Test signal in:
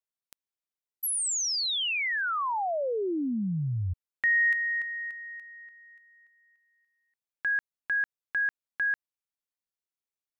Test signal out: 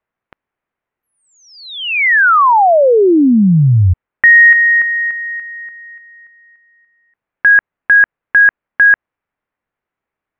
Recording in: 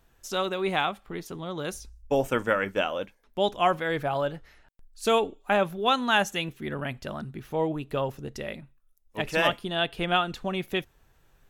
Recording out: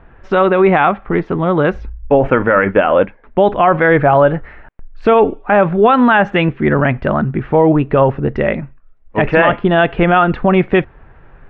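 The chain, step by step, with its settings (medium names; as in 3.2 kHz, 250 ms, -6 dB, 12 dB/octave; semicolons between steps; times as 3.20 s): low-pass 2.1 kHz 24 dB/octave; loudness maximiser +21.5 dB; trim -1 dB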